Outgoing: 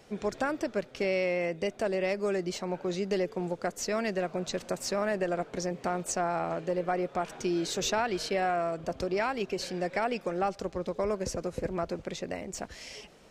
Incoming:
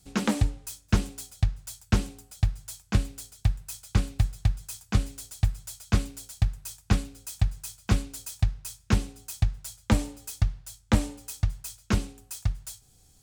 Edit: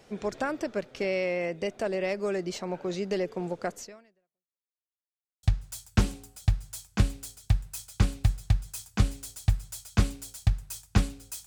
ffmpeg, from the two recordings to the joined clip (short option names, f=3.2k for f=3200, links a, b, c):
-filter_complex "[0:a]apad=whole_dur=11.46,atrim=end=11.46,asplit=2[a][b];[a]atrim=end=4.76,asetpts=PTS-STARTPTS,afade=t=out:st=3.75:d=1.01:c=exp[c];[b]atrim=start=4.76:end=5.43,asetpts=PTS-STARTPTS,volume=0[d];[1:a]atrim=start=1.38:end=7.41,asetpts=PTS-STARTPTS,afade=t=in:d=0.004:c=hsin[e];[c][d][e]concat=n=3:v=0:a=1"